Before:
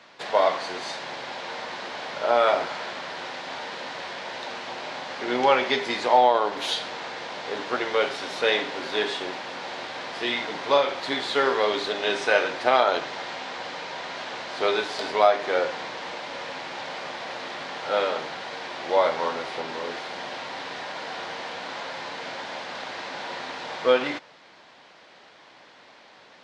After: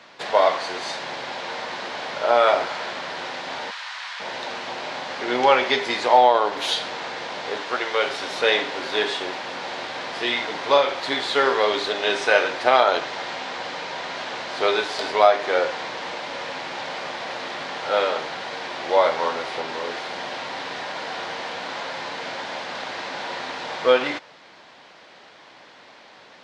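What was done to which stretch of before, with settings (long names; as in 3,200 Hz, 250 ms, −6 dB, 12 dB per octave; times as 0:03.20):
0:03.71–0:04.20: high-pass filter 1,000 Hz 24 dB per octave
0:07.57–0:08.06: low-shelf EQ 450 Hz −6.5 dB
whole clip: dynamic equaliser 200 Hz, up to −4 dB, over −42 dBFS, Q 0.95; level +3.5 dB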